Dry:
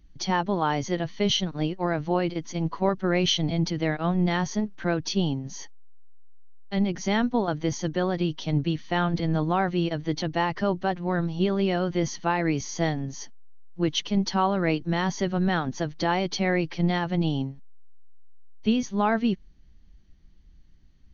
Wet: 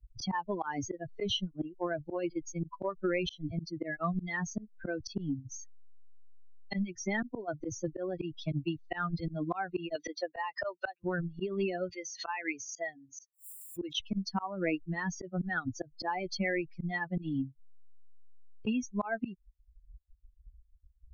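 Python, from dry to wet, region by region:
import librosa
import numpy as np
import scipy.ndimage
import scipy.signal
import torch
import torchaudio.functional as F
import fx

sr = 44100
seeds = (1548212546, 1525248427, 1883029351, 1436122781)

y = fx.chain(x, sr, fx.highpass(hz=460.0, slope=12),
    fx.band_squash(depth_pct=100), at=(9.95, 11.04))
y = fx.chain(y, sr, fx.highpass(hz=820.0, slope=6),
    fx.pre_swell(db_per_s=78.0), at=(11.89, 14.0))
y = fx.bin_expand(y, sr, power=3.0)
y = fx.auto_swell(y, sr, attack_ms=258.0)
y = fx.band_squash(y, sr, depth_pct=100)
y = y * 10.0 ** (6.5 / 20.0)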